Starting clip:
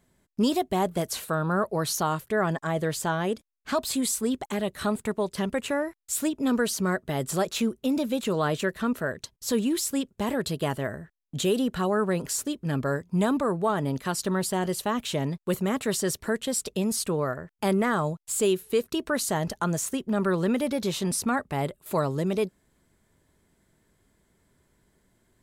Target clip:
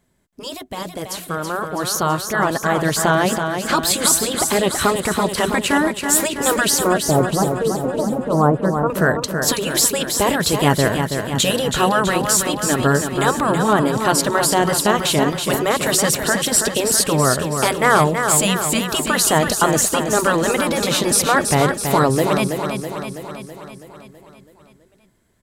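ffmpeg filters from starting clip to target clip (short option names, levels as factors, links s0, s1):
-filter_complex "[0:a]asettb=1/sr,asplit=3[s0][s1][s2];[s0]atrim=end=6.804[s3];[s1]atrim=start=6.8:end=8.9,asetpts=PTS-STARTPTS,afade=t=in:d=0.004:c=qsin,afade=t=out:st=2.096:d=0.004:c=qsin,lowpass=f=1100:w=0.5412,lowpass=f=1100:w=1.3066[s4];[s2]atrim=start=8.896[s5];[s3][s4]acrossfade=d=0.004:c1=hsin:c2=qsin[s6];[s6][s5]acrossfade=d=0.004:c1=qsin:c2=hsin,afftfilt=real='re*lt(hypot(re,im),0.355)':imag='im*lt(hypot(re,im),0.355)':win_size=1024:overlap=0.75,dynaudnorm=f=510:g=9:m=4.22,aecho=1:1:327|654|981|1308|1635|1962|2289|2616:0.473|0.284|0.17|0.102|0.0613|0.0368|0.0221|0.0132,volume=1.19"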